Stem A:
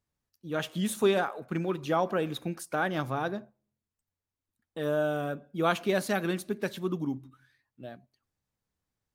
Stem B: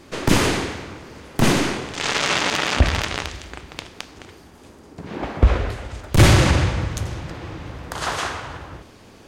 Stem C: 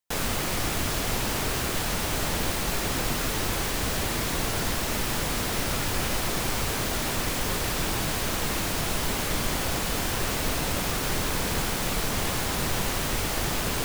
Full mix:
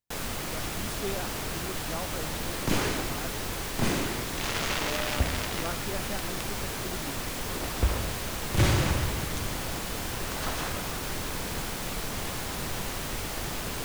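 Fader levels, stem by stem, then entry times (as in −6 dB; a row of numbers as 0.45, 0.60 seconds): −11.0, −11.0, −6.0 decibels; 0.00, 2.40, 0.00 seconds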